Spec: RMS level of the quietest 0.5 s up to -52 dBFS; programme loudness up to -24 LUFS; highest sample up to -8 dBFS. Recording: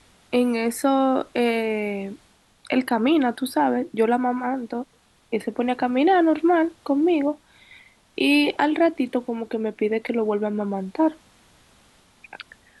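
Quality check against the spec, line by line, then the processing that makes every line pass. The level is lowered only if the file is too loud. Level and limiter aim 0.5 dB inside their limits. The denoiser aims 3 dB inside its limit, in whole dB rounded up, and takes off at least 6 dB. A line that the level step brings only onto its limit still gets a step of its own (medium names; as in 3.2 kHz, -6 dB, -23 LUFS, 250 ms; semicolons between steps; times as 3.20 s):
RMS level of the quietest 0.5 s -57 dBFS: pass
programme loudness -22.5 LUFS: fail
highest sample -7.5 dBFS: fail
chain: trim -2 dB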